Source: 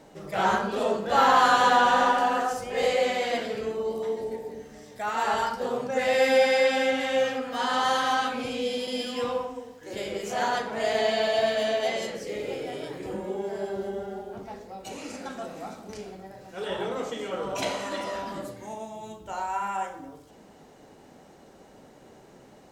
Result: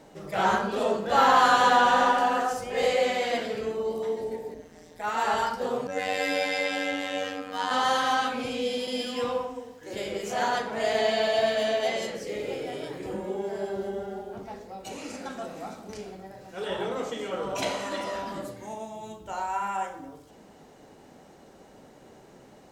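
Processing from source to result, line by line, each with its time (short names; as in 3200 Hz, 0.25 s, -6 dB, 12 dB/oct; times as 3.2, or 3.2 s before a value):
4.54–5.04 AM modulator 170 Hz, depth 75%
5.87–7.71 robotiser 94.4 Hz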